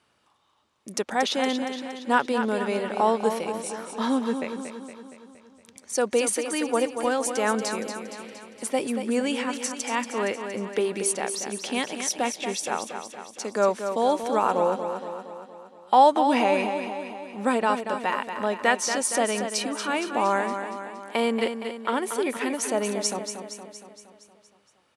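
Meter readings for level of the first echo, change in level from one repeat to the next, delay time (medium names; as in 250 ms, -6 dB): -8.0 dB, -5.0 dB, 233 ms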